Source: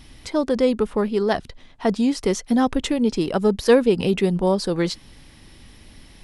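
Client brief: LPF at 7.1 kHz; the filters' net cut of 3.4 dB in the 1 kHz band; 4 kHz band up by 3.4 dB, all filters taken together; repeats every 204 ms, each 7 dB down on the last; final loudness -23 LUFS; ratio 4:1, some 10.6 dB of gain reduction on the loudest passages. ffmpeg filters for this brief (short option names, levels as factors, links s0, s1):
-af "lowpass=7100,equalizer=f=1000:t=o:g=-5,equalizer=f=4000:t=o:g=5,acompressor=threshold=0.0708:ratio=4,aecho=1:1:204|408|612|816|1020:0.447|0.201|0.0905|0.0407|0.0183,volume=1.58"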